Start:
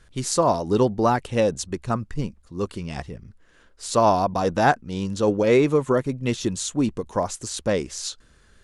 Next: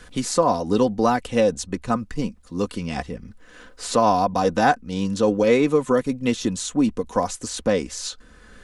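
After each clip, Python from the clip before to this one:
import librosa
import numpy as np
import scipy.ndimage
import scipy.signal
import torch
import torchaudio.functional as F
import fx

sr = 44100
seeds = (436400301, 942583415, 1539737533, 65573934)

y = x + 0.51 * np.pad(x, (int(4.0 * sr / 1000.0), 0))[:len(x)]
y = fx.band_squash(y, sr, depth_pct=40)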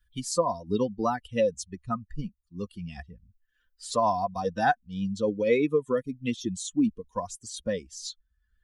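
y = fx.bin_expand(x, sr, power=2.0)
y = y * librosa.db_to_amplitude(-2.5)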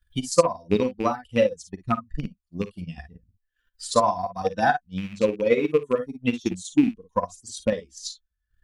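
y = fx.rattle_buzz(x, sr, strikes_db=-29.0, level_db=-30.0)
y = fx.room_early_taps(y, sr, ms=(43, 55), db=(-8.5, -6.5))
y = fx.transient(y, sr, attack_db=10, sustain_db=-7)
y = y * librosa.db_to_amplitude(-1.5)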